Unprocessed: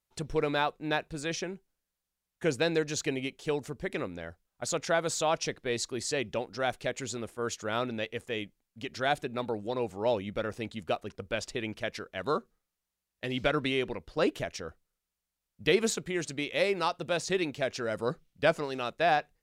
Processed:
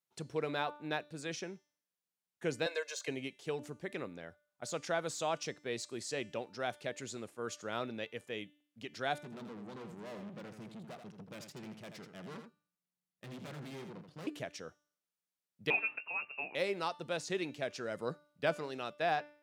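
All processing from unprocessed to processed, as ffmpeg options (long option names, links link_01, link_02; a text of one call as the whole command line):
ffmpeg -i in.wav -filter_complex "[0:a]asettb=1/sr,asplit=3[link_01][link_02][link_03];[link_01]atrim=end=2.664[link_04];[link_02]atrim=start=2.66:end=3.08,asetpts=PTS-STARTPTS,afade=type=in:duration=0.004:curve=qsin,afade=type=out:start_time=0.416:duration=0.004:curve=qsin,highpass=frequency=570:width=0.5412,highpass=frequency=570:width=1.3066,aecho=1:1:1.9:0.92,atrim=end_sample=18522[link_05];[link_03]atrim=start=3.076[link_06];[link_04][link_05]acrossfade=duration=0.004:curve1=hsin:curve2=qsin[link_07];[link_07][link_06]acrossfade=duration=0.004:curve1=qsin:curve2=hsin,asettb=1/sr,asplit=3[link_08][link_09][link_10];[link_08]atrim=end=9.214[link_11];[link_09]atrim=start=9.21:end=14.27,asetpts=PTS-STARTPTS,afade=type=in:duration=0.004:curve=qsin,afade=type=out:start_time=5.056:duration=0.004:curve=qsin,equalizer=frequency=160:width=1.4:gain=15,aeval=exprs='(tanh(79.4*val(0)+0.7)-tanh(0.7))/79.4':channel_layout=same,aecho=1:1:82:0.422,atrim=end_sample=223146[link_12];[link_10]atrim=start=14.266[link_13];[link_11][link_12]acrossfade=duration=0.004:curve1=hsin:curve2=qsin[link_14];[link_14][link_13]acrossfade=duration=0.004:curve1=qsin:curve2=hsin,asettb=1/sr,asplit=3[link_15][link_16][link_17];[link_15]atrim=end=15.704[link_18];[link_16]atrim=start=15.7:end=16.55,asetpts=PTS-STARTPTS,afade=type=in:duration=0.004:curve=qsin,afade=type=out:start_time=0.846:duration=0.004:curve=qsin,lowpass=frequency=2500:width_type=q:width=0.5098,lowpass=frequency=2500:width_type=q:width=0.6013,lowpass=frequency=2500:width_type=q:width=0.9,lowpass=frequency=2500:width_type=q:width=2.563,afreqshift=-2900,asplit=2[link_19][link_20];[link_20]adelay=20,volume=-12.5dB[link_21];[link_19][link_21]amix=inputs=2:normalize=0,atrim=end_sample=37485[link_22];[link_17]atrim=start=16.546[link_23];[link_18][link_22]acrossfade=duration=0.004:curve1=hsin:curve2=qsin[link_24];[link_24][link_23]acrossfade=duration=0.004:curve1=qsin:curve2=hsin,bandreject=frequency=295.3:width_type=h:width=4,bandreject=frequency=590.6:width_type=h:width=4,bandreject=frequency=885.9:width_type=h:width=4,bandreject=frequency=1181.2:width_type=h:width=4,bandreject=frequency=1476.5:width_type=h:width=4,bandreject=frequency=1771.8:width_type=h:width=4,bandreject=frequency=2067.1:width_type=h:width=4,bandreject=frequency=2362.4:width_type=h:width=4,bandreject=frequency=2657.7:width_type=h:width=4,bandreject=frequency=2953:width_type=h:width=4,bandreject=frequency=3248.3:width_type=h:width=4,bandreject=frequency=3543.6:width_type=h:width=4,bandreject=frequency=3838.9:width_type=h:width=4,bandreject=frequency=4134.2:width_type=h:width=4,bandreject=frequency=4429.5:width_type=h:width=4,bandreject=frequency=4724.8:width_type=h:width=4,bandreject=frequency=5020.1:width_type=h:width=4,bandreject=frequency=5315.4:width_type=h:width=4,bandreject=frequency=5610.7:width_type=h:width=4,bandreject=frequency=5906:width_type=h:width=4,bandreject=frequency=6201.3:width_type=h:width=4,bandreject=frequency=6496.6:width_type=h:width=4,bandreject=frequency=6791.9:width_type=h:width=4,bandreject=frequency=7087.2:width_type=h:width=4,bandreject=frequency=7382.5:width_type=h:width=4,bandreject=frequency=7677.8:width_type=h:width=4,bandreject=frequency=7973.1:width_type=h:width=4,bandreject=frequency=8268.4:width_type=h:width=4,bandreject=frequency=8563.7:width_type=h:width=4,bandreject=frequency=8859:width_type=h:width=4,bandreject=frequency=9154.3:width_type=h:width=4,bandreject=frequency=9449.6:width_type=h:width=4,bandreject=frequency=9744.9:width_type=h:width=4,bandreject=frequency=10040.2:width_type=h:width=4,bandreject=frequency=10335.5:width_type=h:width=4,deesser=0.65,highpass=frequency=110:width=0.5412,highpass=frequency=110:width=1.3066,volume=-7dB" out.wav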